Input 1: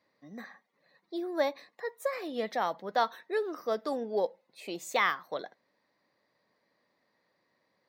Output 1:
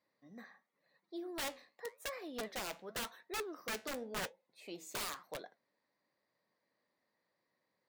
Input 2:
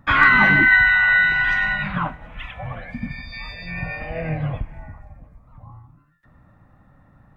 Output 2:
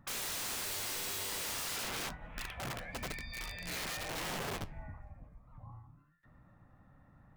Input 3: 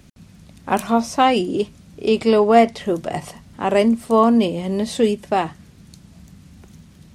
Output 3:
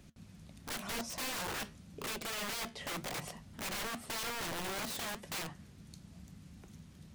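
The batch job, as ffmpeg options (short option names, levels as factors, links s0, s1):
-af "acompressor=threshold=0.1:ratio=5,aeval=exprs='(mod(17.8*val(0)+1,2)-1)/17.8':c=same,flanger=delay=5.5:depth=8.7:regen=-75:speed=0.92:shape=sinusoidal,volume=0.596"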